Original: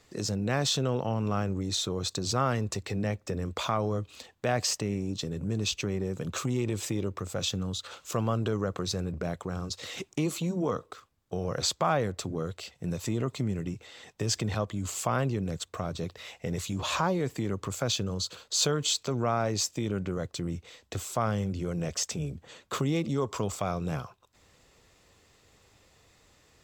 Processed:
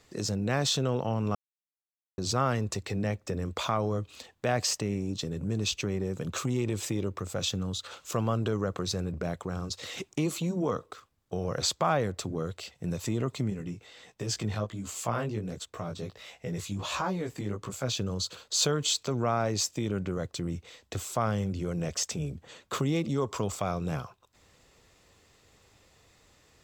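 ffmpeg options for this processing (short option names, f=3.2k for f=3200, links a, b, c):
-filter_complex "[0:a]asettb=1/sr,asplit=3[a][b][c];[a]atrim=end=13.504[d];[b]atrim=start=13.5:end=17.97,asetpts=PTS-STARTPTS,afade=t=in:d=0.004:c=qsin,afade=t=out:st=4.466:d=0.004:c=qsin,flanger=delay=15:depth=4.7:speed=1.4[e];[c]atrim=start=17.966[f];[d][e]acrossfade=d=0.004:c1=hsin:c2=qsin[g];[g][f]acrossfade=d=0.004:c1=qsin:c2=hsin,asplit=3[h][i][j];[h]atrim=end=1.35,asetpts=PTS-STARTPTS,afade=t=out:st=1.346:d=0.004:c=hsin[k];[i]atrim=start=1.35:end=2.18,asetpts=PTS-STARTPTS,volume=0[l];[j]atrim=start=2.18,asetpts=PTS-STARTPTS,afade=t=in:d=0.004:c=hsin[m];[k][l][m]concat=n=3:v=0:a=1"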